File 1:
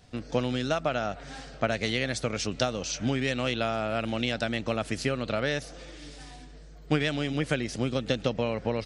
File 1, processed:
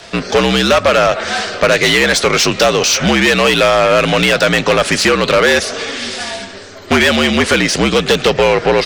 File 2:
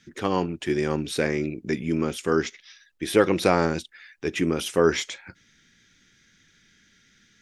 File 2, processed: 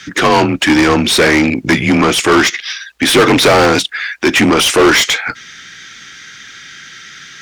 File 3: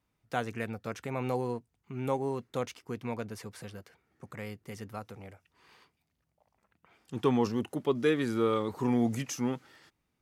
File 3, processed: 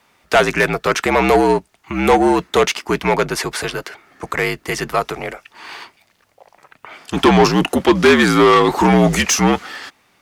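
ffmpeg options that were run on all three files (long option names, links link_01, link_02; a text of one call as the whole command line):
ffmpeg -i in.wav -filter_complex "[0:a]afreqshift=-58,asplit=2[link_01][link_02];[link_02]highpass=frequency=720:poles=1,volume=30dB,asoftclip=type=tanh:threshold=-5.5dB[link_03];[link_01][link_03]amix=inputs=2:normalize=0,lowpass=frequency=5100:poles=1,volume=-6dB,volume=4.5dB" out.wav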